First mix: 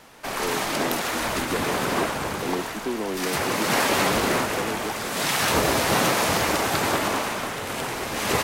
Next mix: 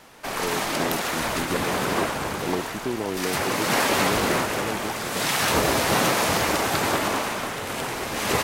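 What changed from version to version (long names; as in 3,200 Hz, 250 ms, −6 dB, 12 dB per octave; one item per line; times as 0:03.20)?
speech: remove Butterworth high-pass 180 Hz 96 dB per octave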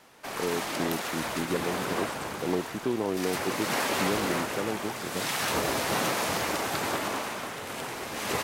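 background −6.5 dB
master: add low-shelf EQ 60 Hz −10.5 dB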